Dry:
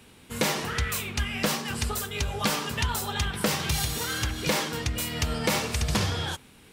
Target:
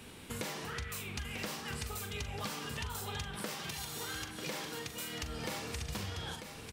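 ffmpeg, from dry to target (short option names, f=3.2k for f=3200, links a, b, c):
-filter_complex "[0:a]asplit=2[a][b];[b]adelay=41,volume=-9dB[c];[a][c]amix=inputs=2:normalize=0,acompressor=threshold=-41dB:ratio=5,asettb=1/sr,asplit=3[d][e][f];[d]atrim=end=3.354[g];[e]atrim=start=3.35:end=5.23,asetpts=PTS-STARTPTS,afade=t=in:d=0.004:c=qsin,afade=t=out:st=1.876:d=0.004:c=qsin,highpass=160[h];[f]atrim=start=5.226[i];[g][h]acrossfade=d=0.004:c1=hsin:c2=qsin[j];[j][i]acrossfade=d=0.004:c1=qsin:c2=hsin,aecho=1:1:944:0.376,volume=1.5dB"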